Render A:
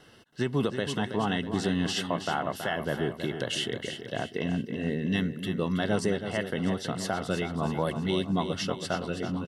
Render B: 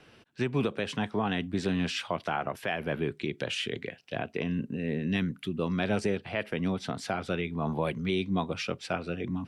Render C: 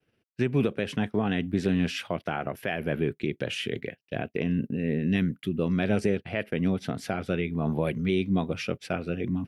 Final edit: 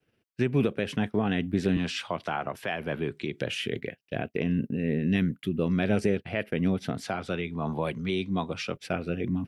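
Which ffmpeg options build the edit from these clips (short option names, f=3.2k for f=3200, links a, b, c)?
-filter_complex "[1:a]asplit=2[a][b];[2:a]asplit=3[c][d][e];[c]atrim=end=1.772[f];[a]atrim=start=1.768:end=3.412[g];[d]atrim=start=3.408:end=7.032[h];[b]atrim=start=7.028:end=8.762[i];[e]atrim=start=8.758[j];[f][g]acrossfade=d=0.004:c1=hsin:c2=hsin[k];[k][h]acrossfade=d=0.004:c1=hsin:c2=hsin[l];[l][i]acrossfade=d=0.004:c1=hsin:c2=hsin[m];[m][j]acrossfade=d=0.004:c1=hsin:c2=hsin"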